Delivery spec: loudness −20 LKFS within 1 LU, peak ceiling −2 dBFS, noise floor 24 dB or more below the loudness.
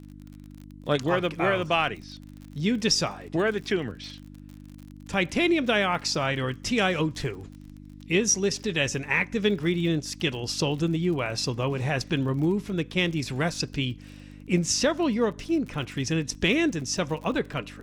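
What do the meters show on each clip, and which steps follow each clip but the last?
crackle rate 44 per second; mains hum 50 Hz; hum harmonics up to 300 Hz; level of the hum −45 dBFS; integrated loudness −26.0 LKFS; sample peak −10.5 dBFS; target loudness −20.0 LKFS
→ click removal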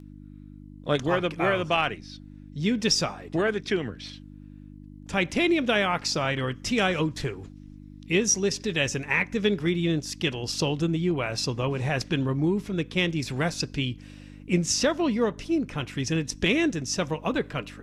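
crackle rate 0.11 per second; mains hum 50 Hz; hum harmonics up to 300 Hz; level of the hum −45 dBFS
→ hum removal 50 Hz, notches 6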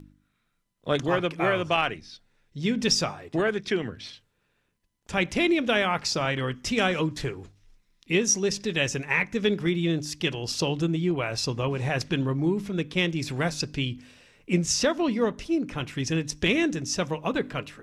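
mains hum none found; integrated loudness −26.5 LKFS; sample peak −11.0 dBFS; target loudness −20.0 LKFS
→ level +6.5 dB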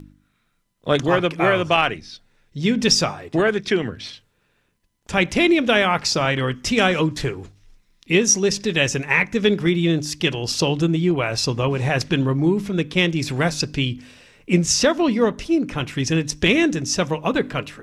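integrated loudness −20.0 LKFS; sample peak −4.5 dBFS; background noise floor −67 dBFS

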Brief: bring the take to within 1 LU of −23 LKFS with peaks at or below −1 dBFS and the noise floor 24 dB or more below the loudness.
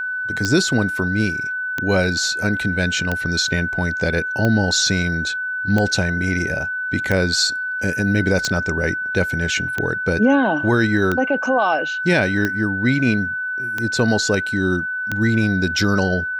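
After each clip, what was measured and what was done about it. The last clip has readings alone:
number of clicks 12; interfering tone 1,500 Hz; level of the tone −22 dBFS; integrated loudness −19.0 LKFS; sample peak −4.5 dBFS; target loudness −23.0 LKFS
→ click removal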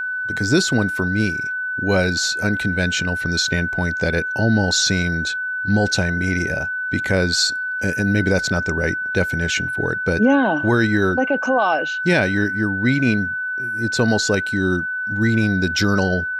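number of clicks 0; interfering tone 1,500 Hz; level of the tone −22 dBFS
→ notch filter 1,500 Hz, Q 30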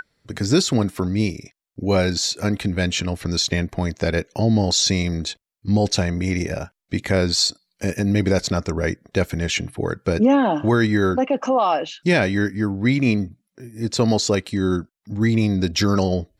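interfering tone none found; integrated loudness −21.0 LKFS; sample peak −6.0 dBFS; target loudness −23.0 LKFS
→ level −2 dB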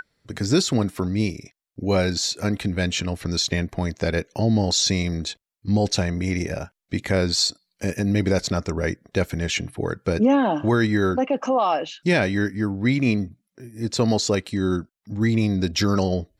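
integrated loudness −23.0 LKFS; sample peak −8.0 dBFS; background noise floor −83 dBFS

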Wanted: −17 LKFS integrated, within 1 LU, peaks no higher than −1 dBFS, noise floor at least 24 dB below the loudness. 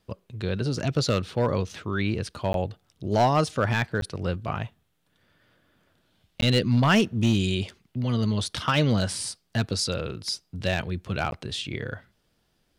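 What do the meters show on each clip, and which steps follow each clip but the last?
share of clipped samples 0.4%; peaks flattened at −14.0 dBFS; number of dropouts 4; longest dropout 12 ms; integrated loudness −26.5 LKFS; sample peak −14.0 dBFS; target loudness −17.0 LKFS
→ clipped peaks rebuilt −14 dBFS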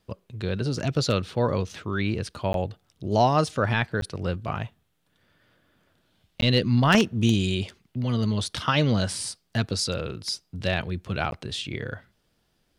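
share of clipped samples 0.0%; number of dropouts 4; longest dropout 12 ms
→ repair the gap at 0:02.53/0:04.01/0:06.41/0:11.31, 12 ms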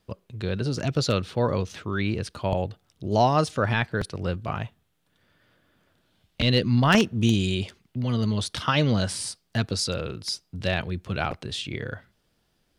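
number of dropouts 0; integrated loudness −26.0 LKFS; sample peak −5.0 dBFS; target loudness −17.0 LKFS
→ level +9 dB
brickwall limiter −1 dBFS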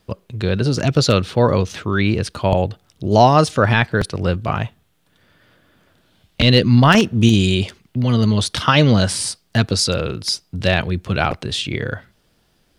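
integrated loudness −17.5 LKFS; sample peak −1.0 dBFS; background noise floor −62 dBFS

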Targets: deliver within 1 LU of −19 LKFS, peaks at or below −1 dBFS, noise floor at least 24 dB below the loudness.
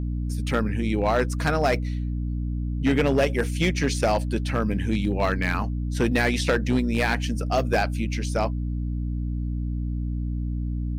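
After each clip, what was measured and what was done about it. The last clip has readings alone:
share of clipped samples 0.8%; peaks flattened at −14.5 dBFS; mains hum 60 Hz; hum harmonics up to 300 Hz; level of the hum −25 dBFS; integrated loudness −25.0 LKFS; sample peak −14.5 dBFS; target loudness −19.0 LKFS
→ clipped peaks rebuilt −14.5 dBFS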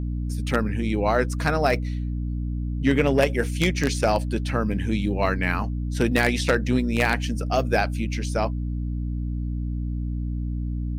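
share of clipped samples 0.0%; mains hum 60 Hz; hum harmonics up to 300 Hz; level of the hum −25 dBFS
→ hum removal 60 Hz, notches 5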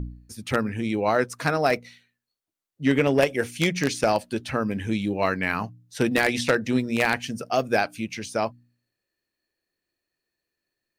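mains hum none found; integrated loudness −24.5 LKFS; sample peak −4.5 dBFS; target loudness −19.0 LKFS
→ level +5.5 dB
brickwall limiter −1 dBFS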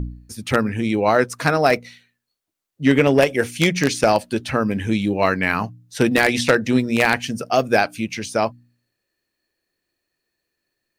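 integrated loudness −19.5 LKFS; sample peak −1.0 dBFS; background noise floor −79 dBFS

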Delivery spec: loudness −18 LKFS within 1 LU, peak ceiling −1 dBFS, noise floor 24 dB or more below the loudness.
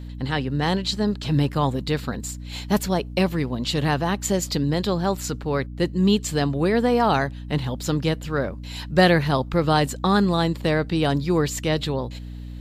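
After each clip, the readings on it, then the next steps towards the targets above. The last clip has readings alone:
mains hum 60 Hz; hum harmonics up to 300 Hz; level of the hum −33 dBFS; integrated loudness −23.0 LKFS; sample peak −3.0 dBFS; target loudness −18.0 LKFS
→ hum removal 60 Hz, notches 5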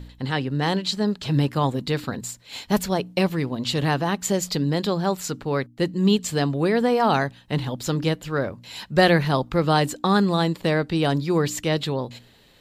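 mains hum none found; integrated loudness −23.0 LKFS; sample peak −4.5 dBFS; target loudness −18.0 LKFS
→ level +5 dB
brickwall limiter −1 dBFS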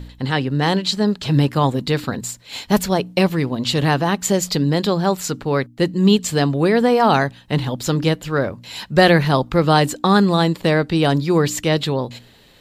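integrated loudness −18.0 LKFS; sample peak −1.0 dBFS; background noise floor −48 dBFS

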